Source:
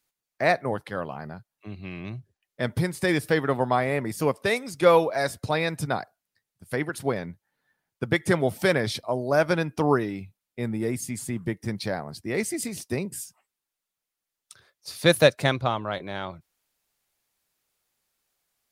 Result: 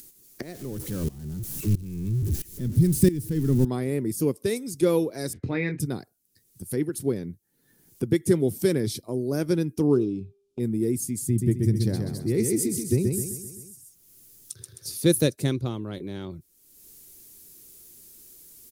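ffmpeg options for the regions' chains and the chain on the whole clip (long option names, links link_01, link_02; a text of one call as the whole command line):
ffmpeg -i in.wav -filter_complex "[0:a]asettb=1/sr,asplit=3[link_01][link_02][link_03];[link_01]atrim=end=0.424[link_04];[link_02]atrim=start=0.42:end=3.65,asetpts=PTS-STARTPTS,afade=type=in:duration=0.004:curve=qsin,afade=type=out:start_time=3.226:duration=0.004:curve=qsin,aeval=exprs='val(0)+0.5*0.0473*sgn(val(0))':channel_layout=same,asubboost=boost=7.5:cutoff=230,aeval=exprs='val(0)*pow(10,-19*if(lt(mod(-1.5*n/s,1),2*abs(-1.5)/1000),1-mod(-1.5*n/s,1)/(2*abs(-1.5)/1000),(mod(-1.5*n/s,1)-2*abs(-1.5)/1000)/(1-2*abs(-1.5)/1000))/20)':channel_layout=same[link_05];[link_03]atrim=start=3.646[link_06];[link_04][link_05]acrossfade=duration=0.004:curve1=hsin:curve2=qsin[link_07];[link_07][link_06]acrossfade=duration=0.004:curve1=qsin:curve2=hsin,asettb=1/sr,asplit=3[link_08][link_09][link_10];[link_08]atrim=end=5.334[link_11];[link_09]atrim=start=5.33:end=5.8,asetpts=PTS-STARTPTS,afade=type=in:duration=0.004:curve=qsin,afade=type=out:start_time=0.466:duration=0.004:curve=qsin,lowpass=frequency=2100:width_type=q:width=4,asplit=2[link_12][link_13];[link_13]adelay=23,volume=-6.5dB[link_14];[link_12][link_14]amix=inputs=2:normalize=0,atrim=end_sample=20727[link_15];[link_10]atrim=start=5.796[link_16];[link_11][link_15]acrossfade=duration=0.004:curve1=hsin:curve2=qsin[link_17];[link_17][link_16]acrossfade=duration=0.004:curve1=qsin:curve2=hsin,asettb=1/sr,asplit=3[link_18][link_19][link_20];[link_18]atrim=end=9.874[link_21];[link_19]atrim=start=9.87:end=10.6,asetpts=PTS-STARTPTS,afade=type=in:duration=0.004:curve=qsin,afade=type=out:start_time=0.726:duration=0.004:curve=qsin,bandreject=frequency=399.1:width_type=h:width=4,bandreject=frequency=798.2:width_type=h:width=4,bandreject=frequency=1197.3:width_type=h:width=4,bandreject=frequency=1596.4:width_type=h:width=4,bandreject=frequency=1995.5:width_type=h:width=4,bandreject=frequency=2394.6:width_type=h:width=4,bandreject=frequency=2793.7:width_type=h:width=4,bandreject=frequency=3192.8:width_type=h:width=4,bandreject=frequency=3591.9:width_type=h:width=4,bandreject=frequency=3991:width_type=h:width=4,bandreject=frequency=4390.1:width_type=h:width=4,bandreject=frequency=4789.2:width_type=h:width=4,bandreject=frequency=5188.3:width_type=h:width=4,bandreject=frequency=5587.4:width_type=h:width=4,bandreject=frequency=5986.5:width_type=h:width=4,bandreject=frequency=6385.6:width_type=h:width=4,bandreject=frequency=6784.7:width_type=h:width=4,bandreject=frequency=7183.8:width_type=h:width=4,bandreject=frequency=7582.9:width_type=h:width=4,bandreject=frequency=7982:width_type=h:width=4,bandreject=frequency=8381.1:width_type=h:width=4,bandreject=frequency=8780.2:width_type=h:width=4,bandreject=frequency=9179.3:width_type=h:width=4,bandreject=frequency=9578.4:width_type=h:width=4,bandreject=frequency=9977.5:width_type=h:width=4,bandreject=frequency=10376.6:width_type=h:width=4,bandreject=frequency=10775.7:width_type=h:width=4,bandreject=frequency=11174.8:width_type=h:width=4,bandreject=frequency=11573.9:width_type=h:width=4,bandreject=frequency=11973:width_type=h:width=4,bandreject=frequency=12372.1:width_type=h:width=4,bandreject=frequency=12771.2:width_type=h:width=4,bandreject=frequency=13170.3:width_type=h:width=4,adynamicsmooth=sensitivity=4.5:basefreq=4400,asuperstop=centerf=1900:order=4:qfactor=1.9[link_22];[link_20]atrim=start=10.596[link_23];[link_21][link_22]acrossfade=duration=0.004:curve1=hsin:curve2=qsin[link_24];[link_24][link_23]acrossfade=duration=0.004:curve1=qsin:curve2=hsin,asettb=1/sr,asplit=3[link_25][link_26][link_27];[link_25]atrim=end=11.254[link_28];[link_26]atrim=start=11.25:end=14.91,asetpts=PTS-STARTPTS,afade=type=in:duration=0.004:curve=qsin,afade=type=out:start_time=3.656:duration=0.004:curve=qsin,equalizer=frequency=110:width=1.7:gain=10,aecho=1:1:130|260|390|520|650:0.631|0.265|0.111|0.0467|0.0196,atrim=end_sample=161406[link_29];[link_27]atrim=start=14.906[link_30];[link_28][link_29]acrossfade=duration=0.004:curve1=hsin:curve2=qsin[link_31];[link_31][link_30]acrossfade=duration=0.004:curve1=qsin:curve2=hsin,firequalizer=gain_entry='entry(180,0);entry(360,4);entry(630,-17);entry(1200,-17);entry(5900,-1);entry(11000,5)':delay=0.05:min_phase=1,acompressor=mode=upward:threshold=-31dB:ratio=2.5,volume=1.5dB" out.wav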